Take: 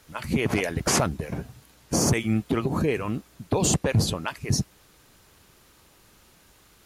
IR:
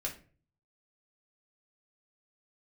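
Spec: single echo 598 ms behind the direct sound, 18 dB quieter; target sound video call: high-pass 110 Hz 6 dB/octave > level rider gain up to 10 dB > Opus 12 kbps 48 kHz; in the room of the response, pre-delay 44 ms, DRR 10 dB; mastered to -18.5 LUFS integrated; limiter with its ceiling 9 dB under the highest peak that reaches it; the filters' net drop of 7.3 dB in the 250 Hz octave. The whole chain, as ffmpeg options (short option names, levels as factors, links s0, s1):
-filter_complex "[0:a]equalizer=f=250:t=o:g=-9,alimiter=limit=0.119:level=0:latency=1,aecho=1:1:598:0.126,asplit=2[s0][s1];[1:a]atrim=start_sample=2205,adelay=44[s2];[s1][s2]afir=irnorm=-1:irlink=0,volume=0.266[s3];[s0][s3]amix=inputs=2:normalize=0,highpass=f=110:p=1,dynaudnorm=m=3.16,volume=4.47" -ar 48000 -c:a libopus -b:a 12k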